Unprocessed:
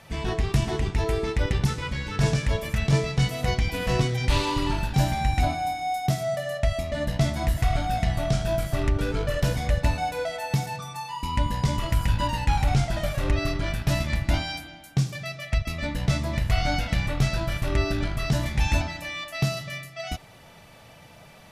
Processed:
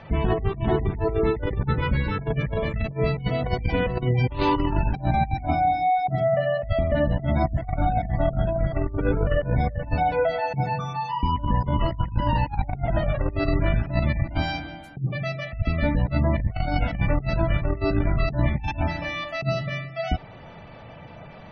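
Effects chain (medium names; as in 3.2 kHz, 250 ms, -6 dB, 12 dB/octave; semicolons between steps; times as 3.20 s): low-pass 1.4 kHz 6 dB/octave; spectral gate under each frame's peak -30 dB strong; compressor with a negative ratio -27 dBFS, ratio -0.5; trim +5 dB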